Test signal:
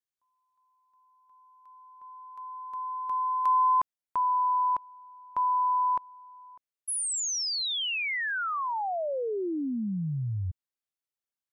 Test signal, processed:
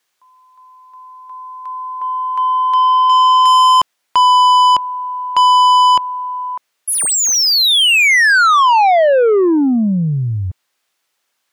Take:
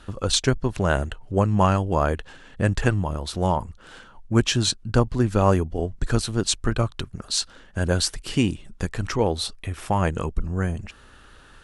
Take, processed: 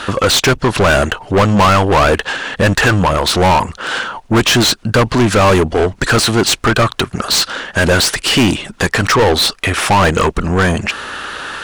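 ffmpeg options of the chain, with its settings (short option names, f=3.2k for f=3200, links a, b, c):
-filter_complex "[0:a]asplit=2[a][b];[b]highpass=f=720:p=1,volume=35dB,asoftclip=type=tanh:threshold=-2.5dB[c];[a][c]amix=inputs=2:normalize=0,lowpass=f=4.4k:p=1,volume=-6dB"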